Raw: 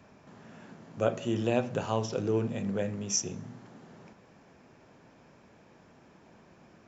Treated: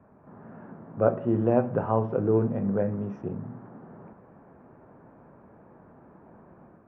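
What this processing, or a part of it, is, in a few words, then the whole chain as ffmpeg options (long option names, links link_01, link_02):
action camera in a waterproof case: -af "lowpass=frequency=1400:width=0.5412,lowpass=frequency=1400:width=1.3066,dynaudnorm=framelen=110:gausssize=5:maxgain=5.5dB" -ar 32000 -c:a aac -b:a 48k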